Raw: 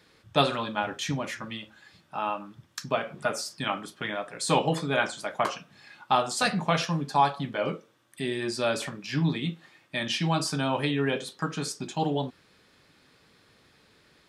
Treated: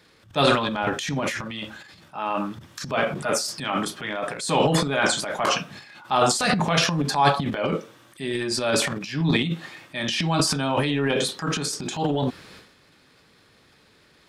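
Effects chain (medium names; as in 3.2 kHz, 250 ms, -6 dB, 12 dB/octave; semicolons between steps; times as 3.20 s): transient shaper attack -5 dB, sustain +12 dB; trim +3 dB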